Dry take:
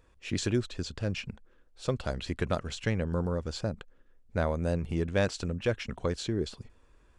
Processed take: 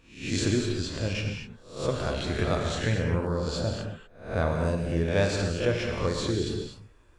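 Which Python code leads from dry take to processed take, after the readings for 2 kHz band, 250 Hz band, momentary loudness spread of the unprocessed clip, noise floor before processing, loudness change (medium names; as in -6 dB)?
+4.5 dB, +3.5 dB, 8 LU, -62 dBFS, +4.0 dB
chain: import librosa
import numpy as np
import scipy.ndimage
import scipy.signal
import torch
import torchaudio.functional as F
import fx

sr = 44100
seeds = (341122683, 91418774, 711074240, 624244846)

y = fx.spec_swells(x, sr, rise_s=0.49)
y = fx.rev_gated(y, sr, seeds[0], gate_ms=270, shape='flat', drr_db=1.5)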